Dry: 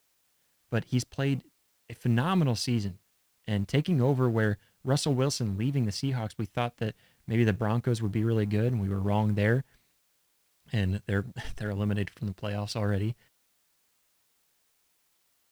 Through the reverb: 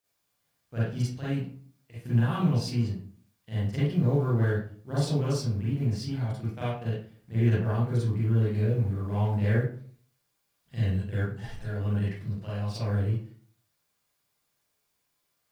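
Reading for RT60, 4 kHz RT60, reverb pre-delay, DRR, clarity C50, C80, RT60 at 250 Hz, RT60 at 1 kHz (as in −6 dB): 0.50 s, 0.30 s, 35 ms, −10.5 dB, −2.0 dB, 5.0 dB, 0.60 s, 0.45 s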